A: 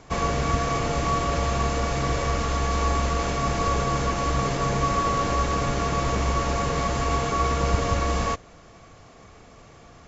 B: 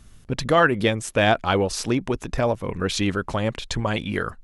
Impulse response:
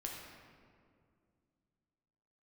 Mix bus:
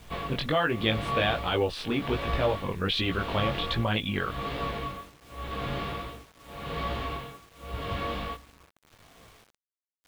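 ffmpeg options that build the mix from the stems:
-filter_complex "[0:a]tremolo=f=0.87:d=0.97,volume=0.562,asplit=2[s0][s1];[s1]volume=0.141[s2];[1:a]alimiter=limit=0.211:level=0:latency=1,volume=0.891[s3];[2:a]atrim=start_sample=2205[s4];[s2][s4]afir=irnorm=-1:irlink=0[s5];[s0][s3][s5]amix=inputs=3:normalize=0,highshelf=f=4800:t=q:w=3:g=-12,flanger=delay=17.5:depth=3.8:speed=1.3,acrusher=bits=8:mix=0:aa=0.000001"

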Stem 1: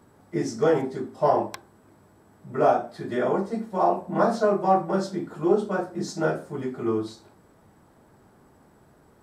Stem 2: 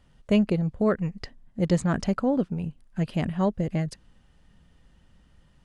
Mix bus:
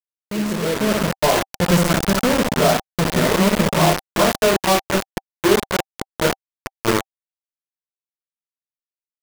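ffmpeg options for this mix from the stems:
-filter_complex "[0:a]volume=0.355[s0];[1:a]flanger=delay=5:depth=6.3:regen=-79:speed=1.7:shape=sinusoidal,volume=0.668,asplit=2[s1][s2];[s2]volume=0.631,aecho=0:1:62|124|186|248|310|372|434|496|558:1|0.59|0.348|0.205|0.121|0.0715|0.0422|0.0249|0.0147[s3];[s0][s1][s3]amix=inputs=3:normalize=0,acrusher=bits=4:mix=0:aa=0.000001,bandreject=f=780:w=13,dynaudnorm=f=320:g=5:m=5.31"

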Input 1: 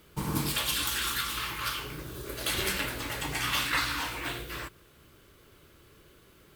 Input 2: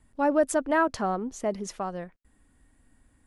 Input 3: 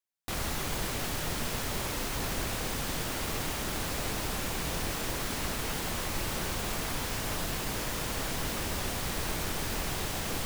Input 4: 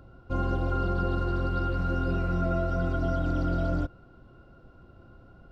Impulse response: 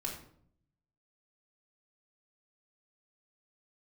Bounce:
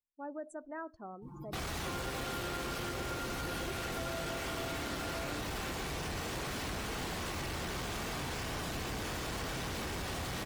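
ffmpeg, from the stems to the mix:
-filter_complex "[0:a]aecho=1:1:5.8:0.95,alimiter=level_in=1.12:limit=0.0631:level=0:latency=1:release=19,volume=0.891,adelay=1050,volume=0.299,asplit=2[s0][s1];[s1]volume=0.335[s2];[1:a]volume=0.106,asplit=3[s3][s4][s5];[s4]volume=0.178[s6];[2:a]highpass=46,highshelf=f=6600:g=-5.5,asoftclip=type=hard:threshold=0.0141,adelay=1250,volume=1.19,asplit=2[s7][s8];[s8]volume=0.447[s9];[3:a]highpass=f=310:w=0.5412,highpass=f=310:w=1.3066,adelay=1550,volume=0.562[s10];[s5]apad=whole_len=335503[s11];[s0][s11]sidechaincompress=threshold=0.001:ratio=10:attack=7.2:release=299[s12];[4:a]atrim=start_sample=2205[s13];[s2][s6][s9]amix=inputs=3:normalize=0[s14];[s14][s13]afir=irnorm=-1:irlink=0[s15];[s12][s3][s7][s10][s15]amix=inputs=5:normalize=0,afftdn=nr=28:nf=-48,acompressor=threshold=0.0141:ratio=2.5"

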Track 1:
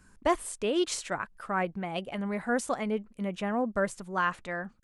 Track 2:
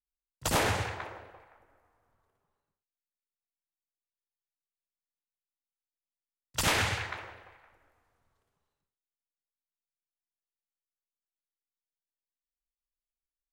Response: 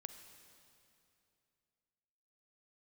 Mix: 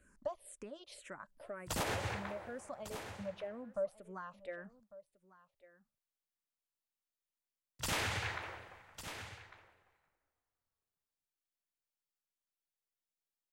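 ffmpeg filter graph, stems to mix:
-filter_complex "[0:a]acompressor=threshold=0.0112:ratio=4,equalizer=f=580:t=o:w=0.33:g=15,asplit=2[s0][s1];[s1]afreqshift=-2[s2];[s0][s2]amix=inputs=2:normalize=1,volume=0.473,asplit=3[s3][s4][s5];[s4]volume=0.119[s6];[1:a]adelay=1250,volume=0.75,asplit=3[s7][s8][s9];[s8]volume=0.237[s10];[s9]volume=0.141[s11];[s5]apad=whole_len=651558[s12];[s7][s12]sidechaincompress=threshold=0.00447:ratio=8:attack=7.2:release=197[s13];[2:a]atrim=start_sample=2205[s14];[s10][s14]afir=irnorm=-1:irlink=0[s15];[s6][s11]amix=inputs=2:normalize=0,aecho=0:1:1150:1[s16];[s3][s13][s15][s16]amix=inputs=4:normalize=0,alimiter=level_in=1.5:limit=0.0631:level=0:latency=1:release=88,volume=0.668"

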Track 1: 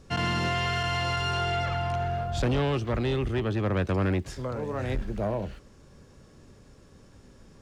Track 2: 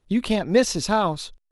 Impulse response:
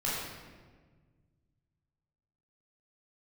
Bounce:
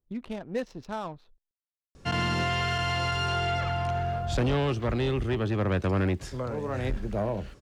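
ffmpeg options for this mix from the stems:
-filter_complex "[0:a]adelay=1950,volume=1[s0];[1:a]adynamicsmooth=sensitivity=2:basefreq=980,volume=0.211[s1];[s0][s1]amix=inputs=2:normalize=0"

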